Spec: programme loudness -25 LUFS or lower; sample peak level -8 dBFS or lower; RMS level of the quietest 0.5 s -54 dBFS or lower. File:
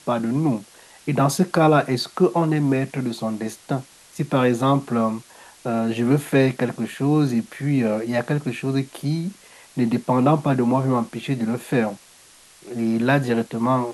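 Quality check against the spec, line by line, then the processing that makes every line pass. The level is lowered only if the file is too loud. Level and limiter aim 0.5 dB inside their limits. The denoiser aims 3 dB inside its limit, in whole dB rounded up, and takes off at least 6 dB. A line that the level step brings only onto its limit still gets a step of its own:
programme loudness -22.0 LUFS: fail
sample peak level -6.0 dBFS: fail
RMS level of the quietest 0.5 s -50 dBFS: fail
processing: noise reduction 6 dB, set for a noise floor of -50 dBFS; trim -3.5 dB

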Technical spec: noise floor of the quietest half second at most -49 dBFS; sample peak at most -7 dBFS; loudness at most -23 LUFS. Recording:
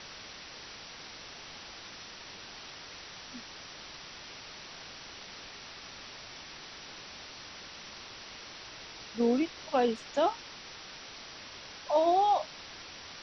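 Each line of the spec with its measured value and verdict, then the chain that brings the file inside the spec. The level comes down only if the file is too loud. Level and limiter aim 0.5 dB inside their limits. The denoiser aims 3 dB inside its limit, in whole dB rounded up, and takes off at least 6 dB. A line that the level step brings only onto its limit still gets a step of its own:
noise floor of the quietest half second -47 dBFS: fail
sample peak -16.0 dBFS: pass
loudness -36.0 LUFS: pass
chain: noise reduction 6 dB, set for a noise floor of -47 dBFS

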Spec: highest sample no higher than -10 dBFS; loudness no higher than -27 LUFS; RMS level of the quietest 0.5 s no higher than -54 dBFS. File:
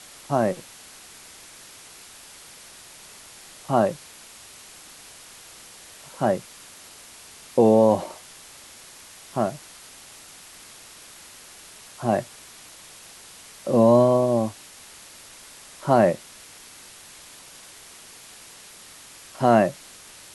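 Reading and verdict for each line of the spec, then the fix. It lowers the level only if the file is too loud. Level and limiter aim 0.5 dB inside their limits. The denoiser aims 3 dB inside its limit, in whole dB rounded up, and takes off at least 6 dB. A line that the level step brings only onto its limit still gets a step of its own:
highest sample -5.5 dBFS: fail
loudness -22.0 LUFS: fail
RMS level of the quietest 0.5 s -46 dBFS: fail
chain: noise reduction 6 dB, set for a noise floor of -46 dBFS; trim -5.5 dB

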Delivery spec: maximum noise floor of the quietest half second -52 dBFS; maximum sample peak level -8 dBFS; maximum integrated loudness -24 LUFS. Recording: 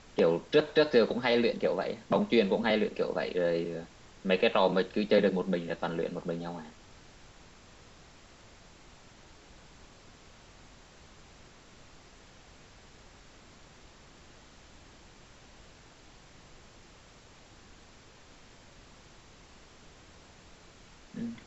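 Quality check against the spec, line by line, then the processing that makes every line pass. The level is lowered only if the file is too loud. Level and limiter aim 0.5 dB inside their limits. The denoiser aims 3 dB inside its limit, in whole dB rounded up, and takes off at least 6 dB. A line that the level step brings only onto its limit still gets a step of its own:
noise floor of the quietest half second -55 dBFS: pass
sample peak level -12.0 dBFS: pass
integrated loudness -29.0 LUFS: pass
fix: none needed

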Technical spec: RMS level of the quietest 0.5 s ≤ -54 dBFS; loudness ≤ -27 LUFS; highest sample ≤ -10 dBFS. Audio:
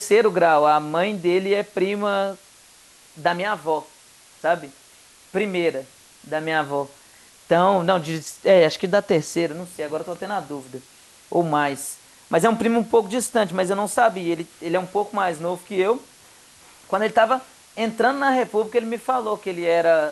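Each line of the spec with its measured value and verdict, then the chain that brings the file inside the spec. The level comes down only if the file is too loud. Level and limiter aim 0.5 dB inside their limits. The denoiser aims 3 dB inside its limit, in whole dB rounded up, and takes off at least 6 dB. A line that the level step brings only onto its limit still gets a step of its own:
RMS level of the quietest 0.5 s -51 dBFS: fail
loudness -21.5 LUFS: fail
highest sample -5.0 dBFS: fail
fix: trim -6 dB

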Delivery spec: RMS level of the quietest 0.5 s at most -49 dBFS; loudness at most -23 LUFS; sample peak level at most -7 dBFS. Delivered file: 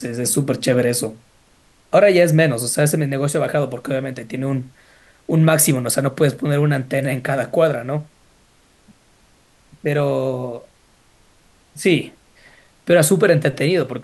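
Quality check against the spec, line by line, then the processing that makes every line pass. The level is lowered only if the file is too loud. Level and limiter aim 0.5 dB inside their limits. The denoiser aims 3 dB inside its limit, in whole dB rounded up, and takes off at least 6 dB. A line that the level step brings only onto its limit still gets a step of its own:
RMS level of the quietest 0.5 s -55 dBFS: pass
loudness -18.0 LUFS: fail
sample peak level -2.0 dBFS: fail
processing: trim -5.5 dB

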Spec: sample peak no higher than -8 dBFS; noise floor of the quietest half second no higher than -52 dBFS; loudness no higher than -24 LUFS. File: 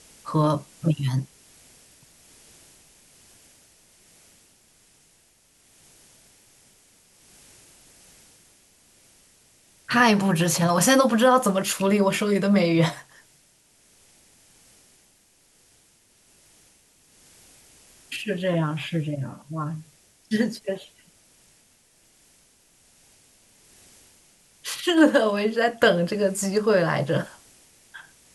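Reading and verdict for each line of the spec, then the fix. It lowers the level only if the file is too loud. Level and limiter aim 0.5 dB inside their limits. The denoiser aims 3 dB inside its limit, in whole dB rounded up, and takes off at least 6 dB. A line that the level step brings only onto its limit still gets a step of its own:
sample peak -6.0 dBFS: fail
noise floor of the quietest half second -60 dBFS: pass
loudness -22.5 LUFS: fail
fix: trim -2 dB; peak limiter -8.5 dBFS

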